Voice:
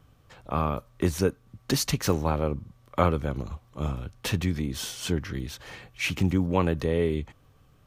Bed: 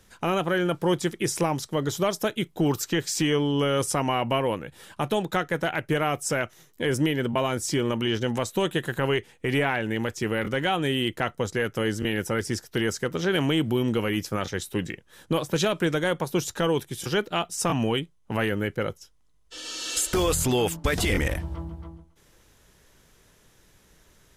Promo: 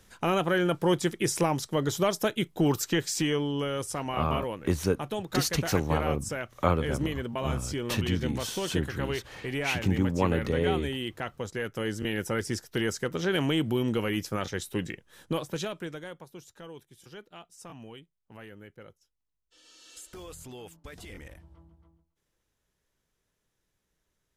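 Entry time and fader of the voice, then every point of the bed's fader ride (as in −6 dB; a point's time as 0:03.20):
3.65 s, −2.0 dB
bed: 0:02.93 −1 dB
0:03.80 −8 dB
0:11.37 −8 dB
0:12.29 −3 dB
0:15.21 −3 dB
0:16.36 −21 dB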